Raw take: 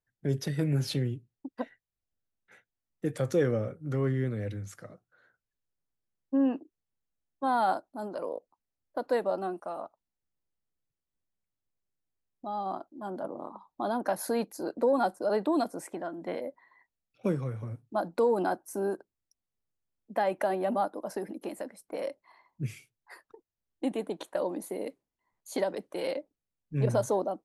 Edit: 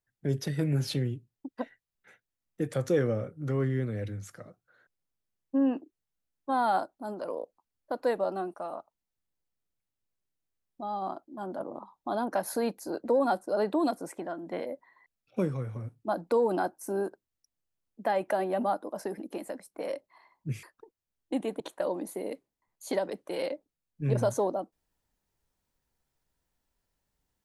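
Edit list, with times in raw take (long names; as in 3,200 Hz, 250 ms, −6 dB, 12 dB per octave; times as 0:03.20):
compress silence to 75%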